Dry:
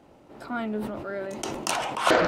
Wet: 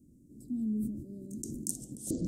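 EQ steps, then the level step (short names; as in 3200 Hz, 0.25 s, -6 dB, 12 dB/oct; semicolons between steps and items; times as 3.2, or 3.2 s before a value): elliptic band-stop 260–7700 Hz, stop band 60 dB; 0.0 dB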